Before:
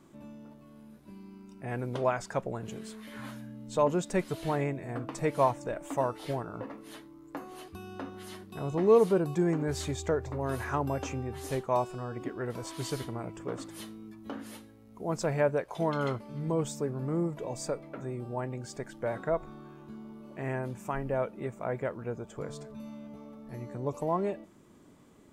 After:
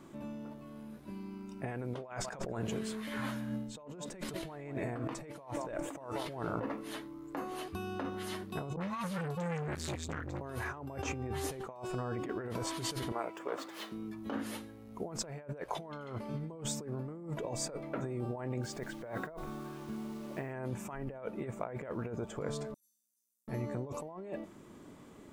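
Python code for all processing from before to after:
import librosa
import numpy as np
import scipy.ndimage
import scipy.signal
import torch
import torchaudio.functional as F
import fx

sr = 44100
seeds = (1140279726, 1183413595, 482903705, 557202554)

y = fx.chain(x, sr, fx.echo_single(ms=183, db=-18.5),
    fx.pre_swell(db_per_s=62.0), at=(2.06, 6.71))
y = fx.chain(y, sr, fx.cheby1_bandstop(low_hz=140.0, high_hz=1300.0, order=2),
    fx.dispersion(late='highs', ms=46.0, hz=690.0),
    fx.transformer_sat(knee_hz=770.0), at=(8.76, 10.41))
y = fx.chain(y, sr, fx.median_filter(points=5),
    fx.highpass(hz=500.0, slope=12), at=(13.12, 13.92))
y = fx.chain(y, sr, fx.high_shelf(hz=8600.0, db=-9.0),
    fx.quant_dither(seeds[0], bits=10, dither='none'), at=(18.63, 20.52))
y = fx.chain(y, sr, fx.cheby2_highpass(hz=2400.0, order=4, stop_db=60),
    fx.transient(attack_db=-12, sustain_db=1), at=(22.74, 23.48))
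y = fx.bass_treble(y, sr, bass_db=-2, treble_db=-3)
y = fx.over_compress(y, sr, threshold_db=-40.0, ratio=-1.0)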